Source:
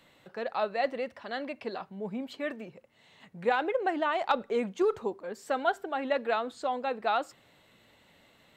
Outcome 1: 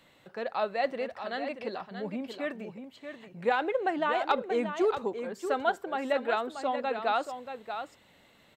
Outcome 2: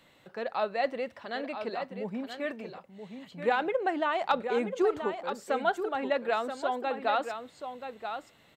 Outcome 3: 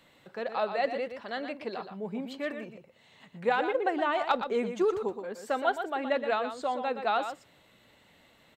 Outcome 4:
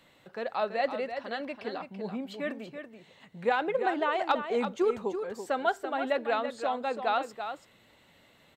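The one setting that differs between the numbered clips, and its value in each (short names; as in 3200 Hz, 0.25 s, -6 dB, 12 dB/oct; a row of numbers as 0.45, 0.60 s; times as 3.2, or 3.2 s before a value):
echo, time: 0.632, 0.98, 0.12, 0.333 s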